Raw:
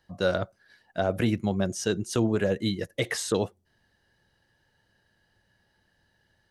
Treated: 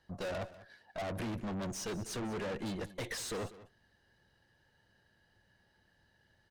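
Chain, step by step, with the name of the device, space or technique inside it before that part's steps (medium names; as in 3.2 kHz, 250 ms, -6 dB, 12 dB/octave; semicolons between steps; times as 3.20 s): 0.41–1.02 s: peaking EQ 670 Hz +5 dB 1.1 oct; tube preamp driven hard (valve stage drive 37 dB, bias 0.55; treble shelf 6.5 kHz -5 dB); delay 194 ms -17 dB; trim +1 dB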